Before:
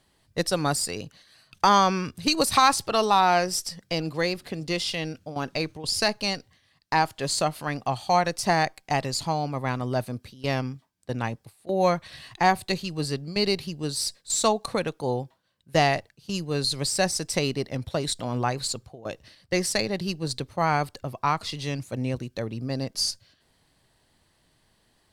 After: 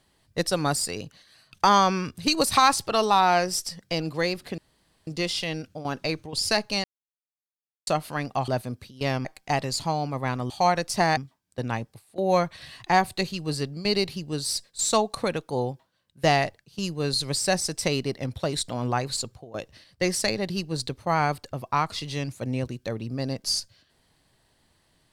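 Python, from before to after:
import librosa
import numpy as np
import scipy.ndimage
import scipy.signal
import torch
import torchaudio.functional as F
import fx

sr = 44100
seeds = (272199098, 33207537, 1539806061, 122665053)

y = fx.edit(x, sr, fx.insert_room_tone(at_s=4.58, length_s=0.49),
    fx.silence(start_s=6.35, length_s=1.03),
    fx.swap(start_s=7.99, length_s=0.67, other_s=9.91, other_length_s=0.77), tone=tone)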